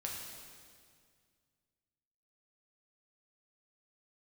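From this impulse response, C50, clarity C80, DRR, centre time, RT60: 1.5 dB, 2.5 dB, -2.5 dB, 85 ms, 2.0 s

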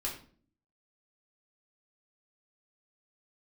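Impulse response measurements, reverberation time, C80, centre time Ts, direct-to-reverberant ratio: 0.45 s, 11.5 dB, 25 ms, -4.0 dB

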